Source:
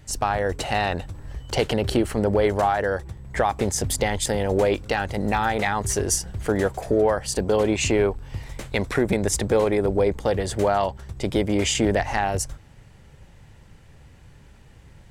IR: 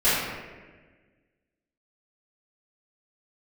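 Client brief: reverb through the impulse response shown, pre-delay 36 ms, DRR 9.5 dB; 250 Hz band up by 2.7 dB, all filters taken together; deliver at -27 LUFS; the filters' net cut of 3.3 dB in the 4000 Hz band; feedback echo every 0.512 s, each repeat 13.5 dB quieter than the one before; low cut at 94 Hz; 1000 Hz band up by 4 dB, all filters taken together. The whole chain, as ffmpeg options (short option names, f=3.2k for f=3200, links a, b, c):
-filter_complex "[0:a]highpass=94,equalizer=f=250:t=o:g=3.5,equalizer=f=1k:t=o:g=5.5,equalizer=f=4k:t=o:g=-5,aecho=1:1:512|1024:0.211|0.0444,asplit=2[a][b];[1:a]atrim=start_sample=2205,adelay=36[c];[b][c]afir=irnorm=-1:irlink=0,volume=-27.5dB[d];[a][d]amix=inputs=2:normalize=0,volume=-6dB"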